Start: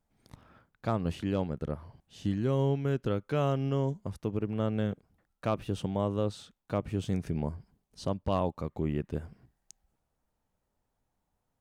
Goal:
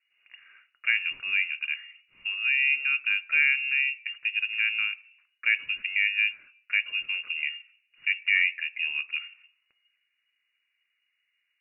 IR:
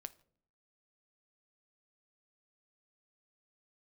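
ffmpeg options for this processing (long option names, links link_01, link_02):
-filter_complex "[0:a]asplit=2[link_01][link_02];[link_02]acrossover=split=250 2000:gain=0.0794 1 0.0794[link_03][link_04][link_05];[link_03][link_04][link_05]amix=inputs=3:normalize=0[link_06];[1:a]atrim=start_sample=2205[link_07];[link_06][link_07]afir=irnorm=-1:irlink=0,volume=9dB[link_08];[link_01][link_08]amix=inputs=2:normalize=0,lowpass=frequency=2500:width_type=q:width=0.5098,lowpass=frequency=2500:width_type=q:width=0.6013,lowpass=frequency=2500:width_type=q:width=0.9,lowpass=frequency=2500:width_type=q:width=2.563,afreqshift=-2900"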